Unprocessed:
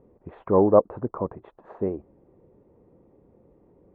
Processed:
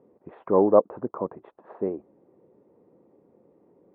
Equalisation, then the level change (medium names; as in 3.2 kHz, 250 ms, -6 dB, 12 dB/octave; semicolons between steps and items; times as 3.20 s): high-pass 200 Hz 12 dB/octave; distance through air 170 m; 0.0 dB